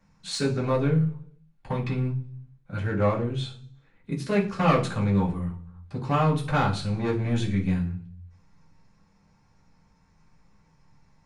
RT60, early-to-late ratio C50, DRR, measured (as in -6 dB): 0.50 s, 10.5 dB, -11.5 dB